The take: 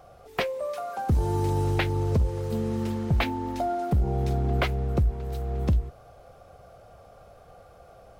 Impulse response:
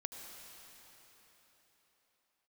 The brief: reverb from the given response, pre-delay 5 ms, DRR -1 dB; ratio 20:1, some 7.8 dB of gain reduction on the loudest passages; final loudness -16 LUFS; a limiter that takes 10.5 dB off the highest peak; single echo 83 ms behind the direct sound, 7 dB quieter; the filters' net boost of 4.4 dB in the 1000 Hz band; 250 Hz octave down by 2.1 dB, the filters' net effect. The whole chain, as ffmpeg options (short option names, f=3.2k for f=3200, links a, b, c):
-filter_complex "[0:a]equalizer=f=250:t=o:g=-3.5,equalizer=f=1k:t=o:g=6.5,acompressor=threshold=-26dB:ratio=20,alimiter=level_in=1.5dB:limit=-24dB:level=0:latency=1,volume=-1.5dB,aecho=1:1:83:0.447,asplit=2[a][b];[1:a]atrim=start_sample=2205,adelay=5[c];[b][c]afir=irnorm=-1:irlink=0,volume=2.5dB[d];[a][d]amix=inputs=2:normalize=0,volume=15.5dB"